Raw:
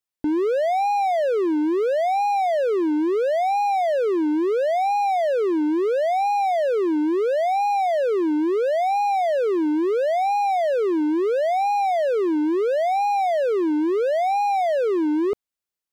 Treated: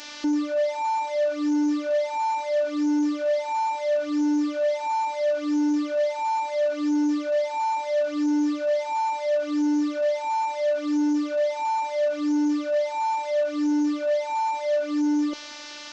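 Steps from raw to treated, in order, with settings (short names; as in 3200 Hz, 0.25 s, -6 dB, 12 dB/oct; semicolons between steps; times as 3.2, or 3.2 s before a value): delta modulation 32 kbps, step -30 dBFS; HPF 200 Hz 12 dB/oct; robotiser 296 Hz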